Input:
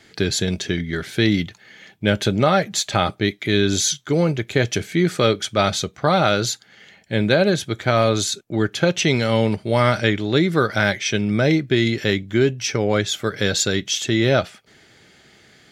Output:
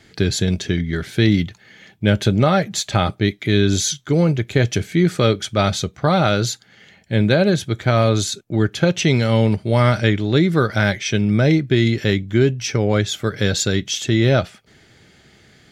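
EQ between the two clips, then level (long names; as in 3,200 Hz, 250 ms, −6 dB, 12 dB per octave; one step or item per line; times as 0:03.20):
low-shelf EQ 180 Hz +9.5 dB
−1.0 dB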